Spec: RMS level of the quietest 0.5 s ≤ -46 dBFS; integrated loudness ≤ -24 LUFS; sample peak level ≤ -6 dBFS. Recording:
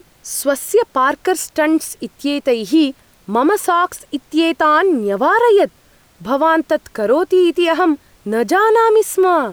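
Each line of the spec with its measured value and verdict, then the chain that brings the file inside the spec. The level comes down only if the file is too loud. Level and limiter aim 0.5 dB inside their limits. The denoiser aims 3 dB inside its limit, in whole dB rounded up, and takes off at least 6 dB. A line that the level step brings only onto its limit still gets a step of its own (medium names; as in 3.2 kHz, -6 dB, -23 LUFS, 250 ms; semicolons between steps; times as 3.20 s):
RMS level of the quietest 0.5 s -51 dBFS: pass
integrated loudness -15.5 LUFS: fail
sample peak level -4.5 dBFS: fail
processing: trim -9 dB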